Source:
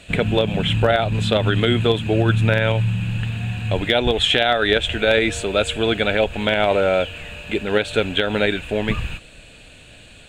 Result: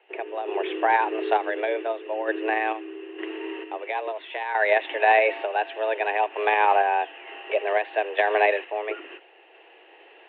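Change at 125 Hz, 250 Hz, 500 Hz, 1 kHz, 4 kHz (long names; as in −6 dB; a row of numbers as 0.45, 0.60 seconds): below −40 dB, −13.5 dB, −5.0 dB, +3.5 dB, −17.5 dB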